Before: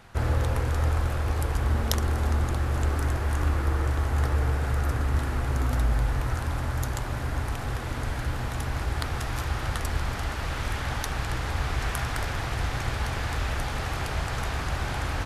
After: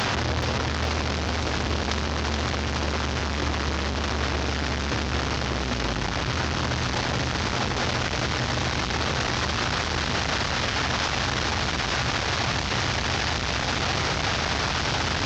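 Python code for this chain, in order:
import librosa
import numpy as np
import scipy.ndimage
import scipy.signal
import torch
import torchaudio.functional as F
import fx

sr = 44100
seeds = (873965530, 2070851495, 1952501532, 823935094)

y = fx.delta_mod(x, sr, bps=32000, step_db=-17.5)
y = scipy.signal.sosfilt(scipy.signal.butter(2, 91.0, 'highpass', fs=sr, output='sos'), y)
y = fx.echo_wet_highpass(y, sr, ms=425, feedback_pct=64, hz=2900.0, wet_db=-5)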